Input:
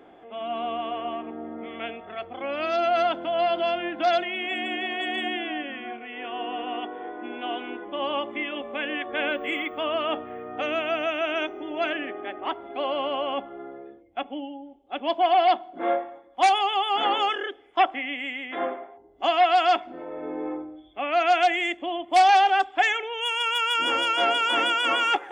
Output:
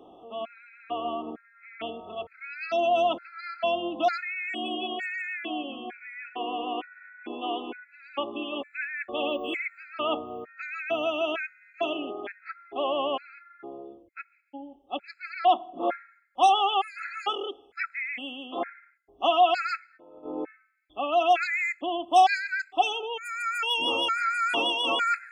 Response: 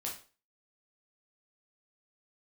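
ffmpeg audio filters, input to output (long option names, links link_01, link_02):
-filter_complex "[0:a]asplit=3[link_01][link_02][link_03];[link_01]afade=type=out:start_time=19.96:duration=0.02[link_04];[link_02]agate=range=-15dB:threshold=-32dB:ratio=16:detection=peak,afade=type=in:start_time=19.96:duration=0.02,afade=type=out:start_time=20.43:duration=0.02[link_05];[link_03]afade=type=in:start_time=20.43:duration=0.02[link_06];[link_04][link_05][link_06]amix=inputs=3:normalize=0,afftfilt=real='re*gt(sin(2*PI*1.1*pts/sr)*(1-2*mod(floor(b*sr/1024/1300),2)),0)':imag='im*gt(sin(2*PI*1.1*pts/sr)*(1-2*mod(floor(b*sr/1024/1300),2)),0)':win_size=1024:overlap=0.75"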